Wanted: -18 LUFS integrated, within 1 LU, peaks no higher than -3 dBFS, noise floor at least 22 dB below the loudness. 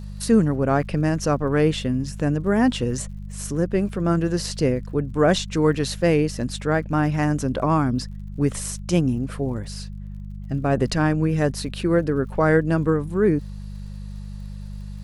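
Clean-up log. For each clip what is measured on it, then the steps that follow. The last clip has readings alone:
tick rate 58 per s; hum 50 Hz; highest harmonic 200 Hz; hum level -31 dBFS; loudness -22.0 LUFS; peak level -5.5 dBFS; loudness target -18.0 LUFS
-> de-click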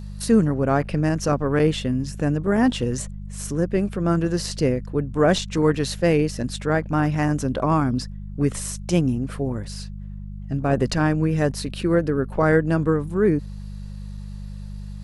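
tick rate 0.20 per s; hum 50 Hz; highest harmonic 200 Hz; hum level -31 dBFS
-> de-hum 50 Hz, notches 4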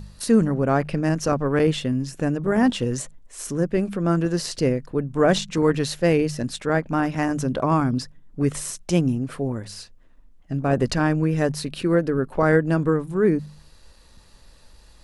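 hum not found; loudness -22.5 LUFS; peak level -6.0 dBFS; loudness target -18.0 LUFS
-> trim +4.5 dB; peak limiter -3 dBFS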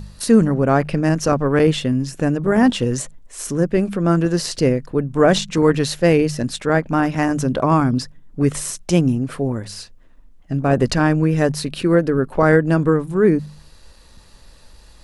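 loudness -18.0 LUFS; peak level -3.0 dBFS; noise floor -47 dBFS

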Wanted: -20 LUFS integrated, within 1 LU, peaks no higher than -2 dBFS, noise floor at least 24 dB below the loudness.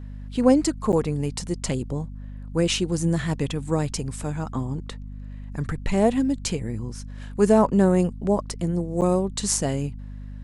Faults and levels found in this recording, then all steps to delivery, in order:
dropouts 2; longest dropout 8.9 ms; hum 50 Hz; highest harmonic 250 Hz; hum level -34 dBFS; loudness -24.0 LUFS; peak level -5.0 dBFS; loudness target -20.0 LUFS
-> interpolate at 0.92/9.01 s, 8.9 ms; hum notches 50/100/150/200/250 Hz; trim +4 dB; peak limiter -2 dBFS

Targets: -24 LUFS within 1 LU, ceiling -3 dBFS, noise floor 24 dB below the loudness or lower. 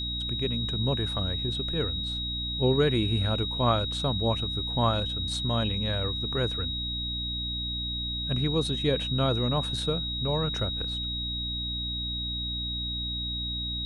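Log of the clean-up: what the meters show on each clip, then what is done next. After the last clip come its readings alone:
hum 60 Hz; highest harmonic 300 Hz; hum level -34 dBFS; steady tone 3.8 kHz; tone level -31 dBFS; loudness -28.0 LUFS; peak level -11.5 dBFS; loudness target -24.0 LUFS
-> de-hum 60 Hz, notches 5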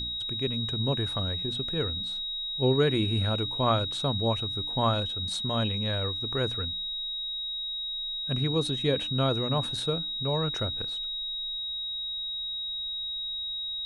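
hum not found; steady tone 3.8 kHz; tone level -31 dBFS
-> band-stop 3.8 kHz, Q 30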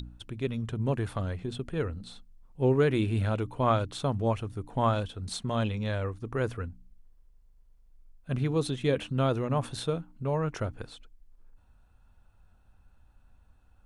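steady tone not found; loudness -30.5 LUFS; peak level -12.5 dBFS; loudness target -24.0 LUFS
-> trim +6.5 dB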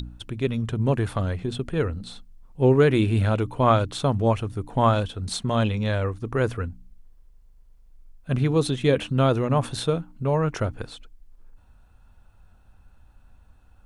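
loudness -24.0 LUFS; peak level -6.0 dBFS; noise floor -55 dBFS

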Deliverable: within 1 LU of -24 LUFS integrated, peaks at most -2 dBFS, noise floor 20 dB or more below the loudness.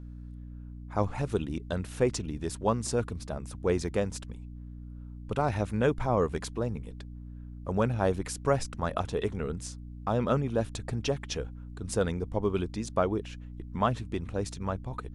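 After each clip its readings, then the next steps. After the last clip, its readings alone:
dropouts 1; longest dropout 1.2 ms; hum 60 Hz; highest harmonic 300 Hz; hum level -40 dBFS; loudness -31.5 LUFS; peak level -12.0 dBFS; loudness target -24.0 LUFS
-> interpolate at 3.88 s, 1.2 ms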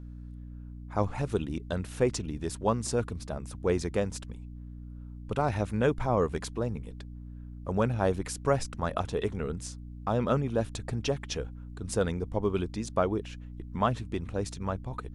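dropouts 0; hum 60 Hz; highest harmonic 300 Hz; hum level -40 dBFS
-> de-hum 60 Hz, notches 5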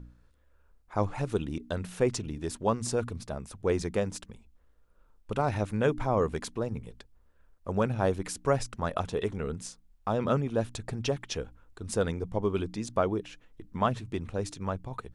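hum not found; loudness -31.5 LUFS; peak level -11.5 dBFS; loudness target -24.0 LUFS
-> trim +7.5 dB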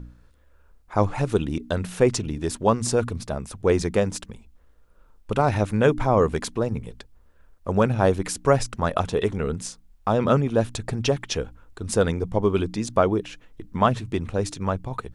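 loudness -24.0 LUFS; peak level -4.0 dBFS; noise floor -56 dBFS

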